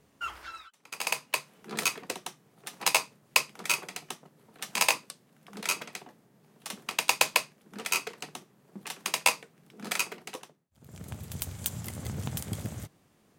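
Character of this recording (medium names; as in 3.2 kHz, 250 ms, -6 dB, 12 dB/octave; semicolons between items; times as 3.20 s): noise floor -65 dBFS; spectral tilt -2.0 dB/octave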